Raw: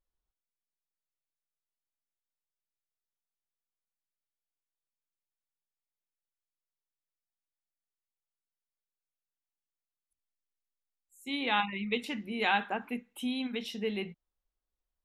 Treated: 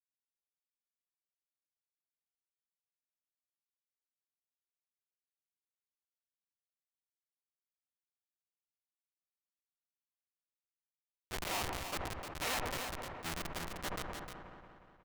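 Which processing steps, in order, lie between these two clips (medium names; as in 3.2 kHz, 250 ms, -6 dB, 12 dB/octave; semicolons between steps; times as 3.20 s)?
cycle switcher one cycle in 3, inverted; band-stop 1.6 kHz, Q 10; Schmitt trigger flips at -28 dBFS; delay 307 ms -13.5 dB; saturation -38.5 dBFS, distortion -18 dB; tilt shelf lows -8 dB, about 640 Hz; feedback echo behind a low-pass 180 ms, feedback 82%, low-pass 1.5 kHz, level -16.5 dB; decay stretcher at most 25 dB/s; trim +4 dB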